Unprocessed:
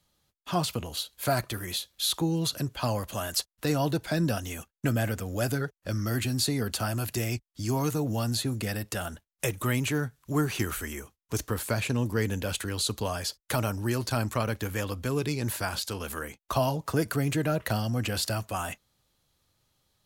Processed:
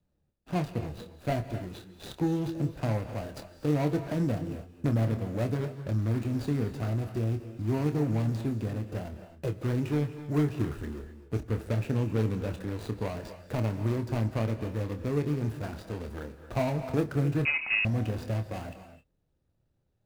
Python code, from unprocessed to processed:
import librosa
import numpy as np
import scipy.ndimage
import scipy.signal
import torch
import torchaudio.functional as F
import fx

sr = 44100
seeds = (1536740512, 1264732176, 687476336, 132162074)

y = scipy.ndimage.median_filter(x, 41, mode='constant')
y = fx.doubler(y, sr, ms=27.0, db=-9)
y = fx.rev_gated(y, sr, seeds[0], gate_ms=290, shape='rising', drr_db=10.0)
y = fx.freq_invert(y, sr, carrier_hz=2700, at=(17.45, 17.85))